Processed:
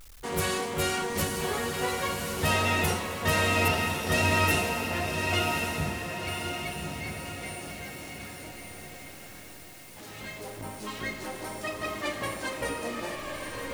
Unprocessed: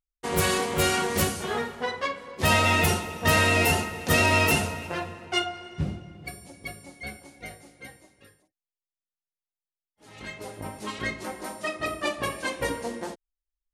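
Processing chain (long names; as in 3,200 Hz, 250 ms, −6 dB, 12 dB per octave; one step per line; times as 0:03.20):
converter with a step at zero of −35.5 dBFS
0:03.68–0:04.12: elliptic low-pass filter 5,500 Hz
feedback delay with all-pass diffusion 1,103 ms, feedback 40%, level −3 dB
level −5.5 dB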